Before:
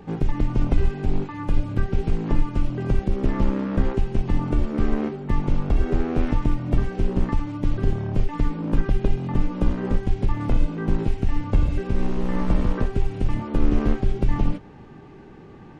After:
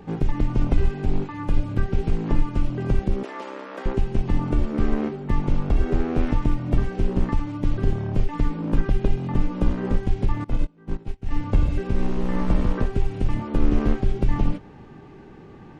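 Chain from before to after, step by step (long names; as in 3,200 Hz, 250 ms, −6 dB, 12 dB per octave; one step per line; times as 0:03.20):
0:03.23–0:03.86: Bessel high-pass filter 580 Hz, order 4
0:10.44–0:11.31: expander for the loud parts 2.5 to 1, over −32 dBFS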